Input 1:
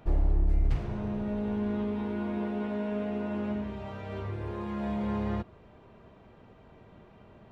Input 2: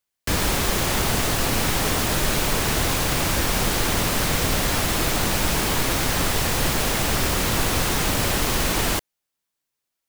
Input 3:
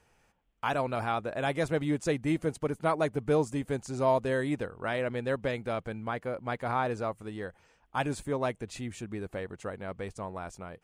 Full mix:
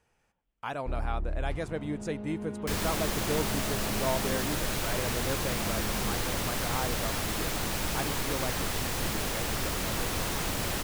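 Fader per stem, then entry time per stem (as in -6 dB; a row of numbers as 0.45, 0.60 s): -7.5, -9.5, -5.5 dB; 0.80, 2.40, 0.00 s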